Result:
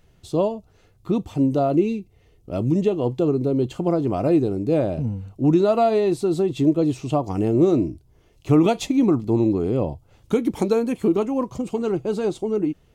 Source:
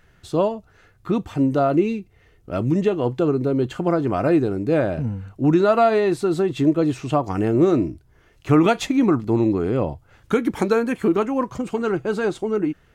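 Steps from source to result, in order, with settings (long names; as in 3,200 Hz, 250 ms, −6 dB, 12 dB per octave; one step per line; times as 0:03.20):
parametric band 1,600 Hz −14 dB 0.9 octaves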